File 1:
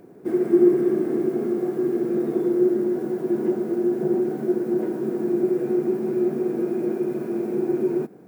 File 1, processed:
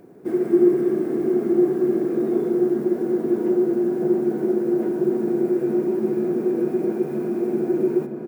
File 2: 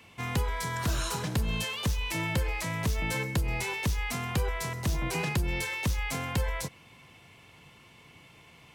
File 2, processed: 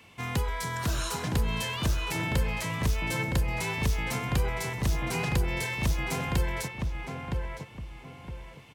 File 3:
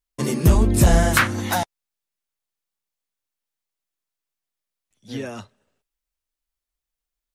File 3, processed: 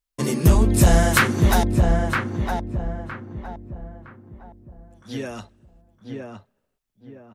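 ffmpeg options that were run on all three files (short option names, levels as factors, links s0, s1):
-filter_complex "[0:a]asplit=2[s0][s1];[s1]adelay=963,lowpass=f=1500:p=1,volume=0.708,asplit=2[s2][s3];[s3]adelay=963,lowpass=f=1500:p=1,volume=0.36,asplit=2[s4][s5];[s5]adelay=963,lowpass=f=1500:p=1,volume=0.36,asplit=2[s6][s7];[s7]adelay=963,lowpass=f=1500:p=1,volume=0.36,asplit=2[s8][s9];[s9]adelay=963,lowpass=f=1500:p=1,volume=0.36[s10];[s0][s2][s4][s6][s8][s10]amix=inputs=6:normalize=0"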